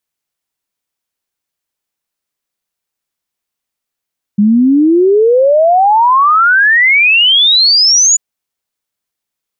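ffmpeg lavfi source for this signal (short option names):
-f lavfi -i "aevalsrc='0.562*clip(min(t,3.79-t)/0.01,0,1)*sin(2*PI*200*3.79/log(7000/200)*(exp(log(7000/200)*t/3.79)-1))':d=3.79:s=44100"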